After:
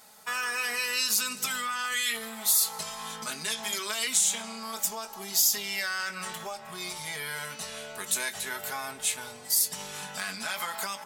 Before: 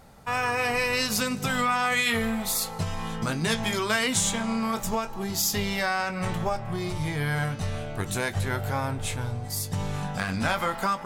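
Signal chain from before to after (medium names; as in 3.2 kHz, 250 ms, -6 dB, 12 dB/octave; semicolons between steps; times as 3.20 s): in parallel at -2 dB: peak limiter -20 dBFS, peak gain reduction 9 dB; on the sum: comb 4.7 ms, depth 68%; compression, threshold -21 dBFS, peak gain reduction 6.5 dB; high-pass 1.2 kHz 6 dB/octave; treble shelf 4.5 kHz +10.5 dB; trim -5.5 dB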